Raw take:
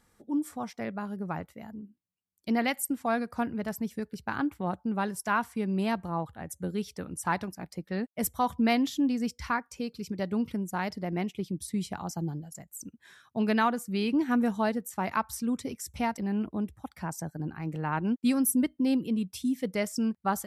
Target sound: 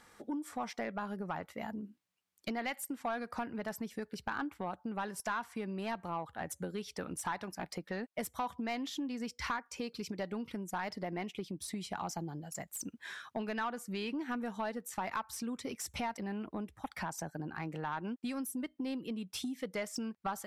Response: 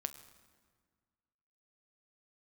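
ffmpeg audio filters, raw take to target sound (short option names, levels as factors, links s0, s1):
-filter_complex "[0:a]acompressor=threshold=0.0112:ratio=8,asplit=2[s0][s1];[s1]highpass=f=720:p=1,volume=5.01,asoftclip=type=tanh:threshold=0.0473[s2];[s0][s2]amix=inputs=2:normalize=0,lowpass=f=3900:p=1,volume=0.501,volume=1.26"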